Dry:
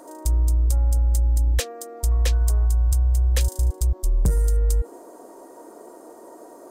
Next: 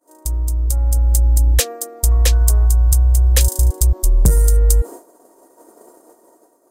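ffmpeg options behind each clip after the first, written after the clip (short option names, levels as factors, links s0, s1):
-af "agate=range=0.0224:threshold=0.0224:ratio=3:detection=peak,highshelf=f=6700:g=9.5,dynaudnorm=f=250:g=7:m=5.62,volume=0.891"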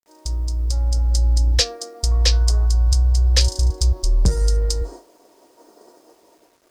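-af "lowpass=f=5000:t=q:w=3.7,flanger=delay=9.8:depth=1.2:regen=-72:speed=1.9:shape=triangular,acrusher=bits=9:mix=0:aa=0.000001,volume=1.12"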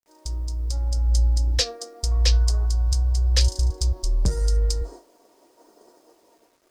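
-af "flanger=delay=0.3:depth=4.1:regen=83:speed=0.86:shape=sinusoidal"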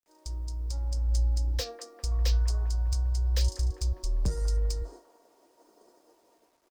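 -filter_complex "[0:a]acrossover=split=230|680|1400[s0][s1][s2][s3];[s2]aecho=1:1:200|400|600|800|1000|1200|1400|1600:0.596|0.34|0.194|0.11|0.0629|0.0358|0.0204|0.0116[s4];[s3]asoftclip=type=tanh:threshold=0.0596[s5];[s0][s1][s4][s5]amix=inputs=4:normalize=0,volume=0.473"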